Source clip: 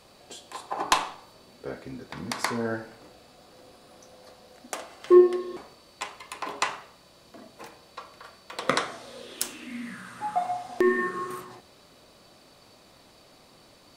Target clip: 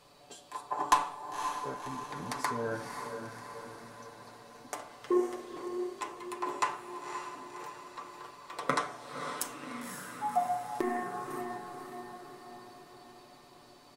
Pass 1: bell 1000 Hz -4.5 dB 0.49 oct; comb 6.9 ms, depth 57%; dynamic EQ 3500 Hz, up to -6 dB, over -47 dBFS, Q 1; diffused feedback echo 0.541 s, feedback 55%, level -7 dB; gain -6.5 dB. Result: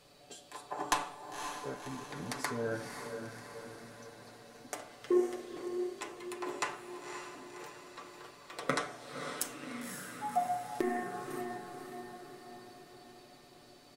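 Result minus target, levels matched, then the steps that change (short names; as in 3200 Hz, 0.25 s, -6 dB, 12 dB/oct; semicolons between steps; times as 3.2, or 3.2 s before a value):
1000 Hz band -3.0 dB
change: bell 1000 Hz +5 dB 0.49 oct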